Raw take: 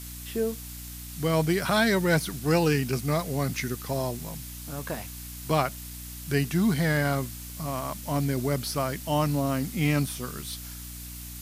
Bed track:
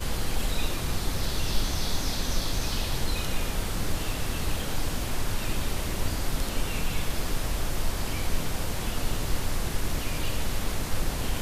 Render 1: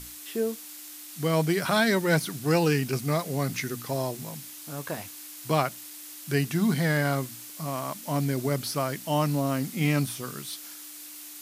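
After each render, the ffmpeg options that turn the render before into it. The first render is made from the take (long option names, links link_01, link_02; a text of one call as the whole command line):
ffmpeg -i in.wav -af "bandreject=frequency=60:width_type=h:width=6,bandreject=frequency=120:width_type=h:width=6,bandreject=frequency=180:width_type=h:width=6,bandreject=frequency=240:width_type=h:width=6" out.wav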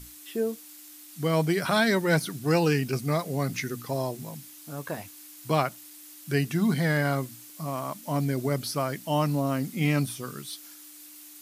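ffmpeg -i in.wav -af "afftdn=noise_reduction=6:noise_floor=-43" out.wav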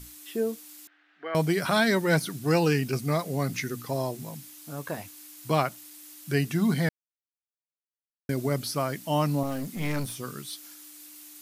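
ffmpeg -i in.wav -filter_complex "[0:a]asettb=1/sr,asplit=3[link_01][link_02][link_03];[link_01]atrim=end=0.874[link_04];[link_02]atrim=start=0.87:end=1.35,asetpts=PTS-STARTPTS,afade=type=in:duration=0.004:curve=qsin,afade=type=out:start_time=0.476:duration=0.004:curve=qsin,highpass=frequency=440:width=0.5412,highpass=frequency=440:width=1.3066,equalizer=frequency=520:width_type=q:width=4:gain=-10,equalizer=frequency=1000:width_type=q:width=4:gain=-9,equalizer=frequency=1600:width_type=q:width=4:gain=8,equalizer=frequency=2300:width_type=q:width=4:gain=-4,lowpass=frequency=2400:width=0.5412,lowpass=frequency=2400:width=1.3066[link_05];[link_03]atrim=start=1.346[link_06];[link_04][link_05]acrossfade=duration=0.004:curve1=hsin:curve2=qsin[link_07];[link_07][link_06]acrossfade=duration=0.004:curve1=qsin:curve2=hsin,asettb=1/sr,asplit=3[link_08][link_09][link_10];[link_08]atrim=end=9.434[link_11];[link_09]atrim=start=9.43:end=10.2,asetpts=PTS-STARTPTS,afade=type=in:duration=0.004:curve=qsin,afade=type=out:start_time=0.766:duration=0.004:curve=qsin,aeval=exprs='clip(val(0),-1,0.02)':channel_layout=same[link_12];[link_10]atrim=start=10.196[link_13];[link_11][link_12]acrossfade=duration=0.004:curve1=hsin:curve2=qsin[link_14];[link_14][link_13]acrossfade=duration=0.004:curve1=qsin:curve2=hsin,asplit=3[link_15][link_16][link_17];[link_15]atrim=end=6.89,asetpts=PTS-STARTPTS,afade=type=out:start_time=6.886:duration=0.004:curve=hsin[link_18];[link_16]atrim=start=6.89:end=8.29,asetpts=PTS-STARTPTS,volume=0[link_19];[link_17]atrim=start=8.29,asetpts=PTS-STARTPTS,afade=type=in:duration=0.004:curve=hsin[link_20];[link_18][link_19][link_20]concat=n=3:v=0:a=1" out.wav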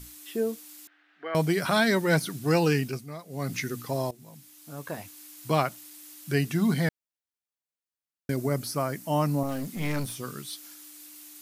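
ffmpeg -i in.wav -filter_complex "[0:a]asettb=1/sr,asplit=3[link_01][link_02][link_03];[link_01]atrim=end=8.364[link_04];[link_02]atrim=start=8.36:end=9.49,asetpts=PTS-STARTPTS,afade=type=in:duration=0.004:curve=qsin,afade=type=out:start_time=1.126:duration=0.004:curve=qsin,equalizer=frequency=3400:width=1.5:gain=-7[link_05];[link_03]atrim=start=9.486[link_06];[link_04][link_05]acrossfade=duration=0.004:curve1=hsin:curve2=qsin[link_07];[link_07][link_06]acrossfade=duration=0.004:curve1=qsin:curve2=hsin,asplit=4[link_08][link_09][link_10][link_11];[link_08]atrim=end=3.06,asetpts=PTS-STARTPTS,afade=type=out:start_time=2.8:duration=0.26:silence=0.211349[link_12];[link_09]atrim=start=3.06:end=3.28,asetpts=PTS-STARTPTS,volume=-13.5dB[link_13];[link_10]atrim=start=3.28:end=4.11,asetpts=PTS-STARTPTS,afade=type=in:duration=0.26:silence=0.211349,afade=type=out:start_time=0.826:duration=0.004:curve=hsin:silence=0.158489[link_14];[link_11]atrim=start=4.11,asetpts=PTS-STARTPTS,afade=type=in:duration=1.45:curve=qsin:silence=0.158489[link_15];[link_12][link_13][link_14][link_15]concat=n=4:v=0:a=1" out.wav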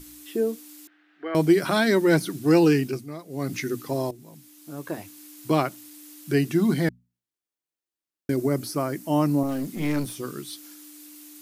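ffmpeg -i in.wav -af "equalizer=frequency=330:width=2.4:gain=11,bandreject=frequency=60:width_type=h:width=6,bandreject=frequency=120:width_type=h:width=6,bandreject=frequency=180:width_type=h:width=6,bandreject=frequency=240:width_type=h:width=6" out.wav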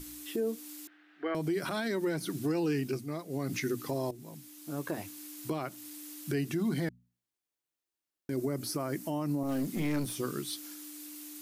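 ffmpeg -i in.wav -af "acompressor=threshold=-30dB:ratio=2,alimiter=limit=-23.5dB:level=0:latency=1:release=70" out.wav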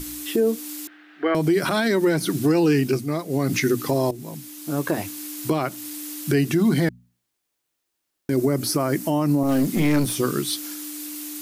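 ffmpeg -i in.wav -af "volume=12dB" out.wav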